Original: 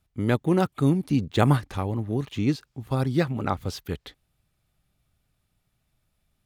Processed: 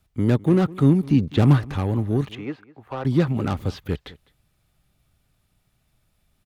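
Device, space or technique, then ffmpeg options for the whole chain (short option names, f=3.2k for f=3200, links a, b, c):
one-band saturation: -filter_complex "[0:a]acrossover=split=3500[a][b];[b]acompressor=threshold=-56dB:ratio=4:attack=1:release=60[c];[a][c]amix=inputs=2:normalize=0,asettb=1/sr,asplit=3[d][e][f];[d]atrim=end=2.354[g];[e]atrim=start=2.35:end=3.05,asetpts=PTS-STARTPTS,afade=t=in:d=0.004:c=qsin,afade=t=out:st=0.696:d=0.004:c=qsin,acrossover=split=460 2100:gain=0.112 1 0.1[h][i][j];[h][i][j]amix=inputs=3:normalize=0[k];[f]atrim=start=3.046[l];[g][k]acrossfade=d=0.004:c1=hsin:c2=qsin[m];[m][l]acrossfade=d=0.004:c1=qsin:c2=hsin,acrossover=split=380|3600[n][o][p];[o]asoftclip=type=tanh:threshold=-31.5dB[q];[n][q][p]amix=inputs=3:normalize=0,asplit=2[r][s];[s]adelay=204.1,volume=-21dB,highshelf=f=4k:g=-4.59[t];[r][t]amix=inputs=2:normalize=0,volume=5.5dB"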